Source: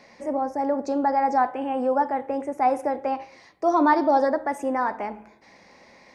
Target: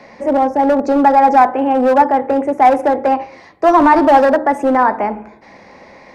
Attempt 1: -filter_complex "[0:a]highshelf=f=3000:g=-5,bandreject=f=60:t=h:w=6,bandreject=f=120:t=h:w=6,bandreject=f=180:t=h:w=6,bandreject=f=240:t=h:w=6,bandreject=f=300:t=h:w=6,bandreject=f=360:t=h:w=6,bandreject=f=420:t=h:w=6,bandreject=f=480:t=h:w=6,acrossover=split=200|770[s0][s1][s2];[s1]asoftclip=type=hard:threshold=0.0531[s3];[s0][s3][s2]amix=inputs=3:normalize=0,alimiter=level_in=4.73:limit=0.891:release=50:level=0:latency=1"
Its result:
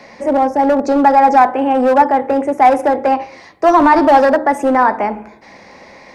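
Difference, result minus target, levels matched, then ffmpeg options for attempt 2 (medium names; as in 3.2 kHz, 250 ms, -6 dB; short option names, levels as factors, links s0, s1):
8 kHz band +4.0 dB
-filter_complex "[0:a]highshelf=f=3000:g=-12.5,bandreject=f=60:t=h:w=6,bandreject=f=120:t=h:w=6,bandreject=f=180:t=h:w=6,bandreject=f=240:t=h:w=6,bandreject=f=300:t=h:w=6,bandreject=f=360:t=h:w=6,bandreject=f=420:t=h:w=6,bandreject=f=480:t=h:w=6,acrossover=split=200|770[s0][s1][s2];[s1]asoftclip=type=hard:threshold=0.0531[s3];[s0][s3][s2]amix=inputs=3:normalize=0,alimiter=level_in=4.73:limit=0.891:release=50:level=0:latency=1"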